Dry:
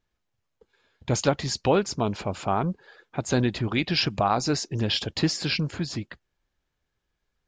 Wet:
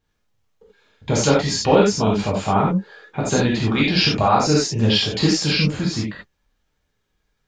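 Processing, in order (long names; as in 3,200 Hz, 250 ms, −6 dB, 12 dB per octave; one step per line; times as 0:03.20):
reverb whose tail is shaped and stops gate 110 ms flat, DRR −5 dB
level +1 dB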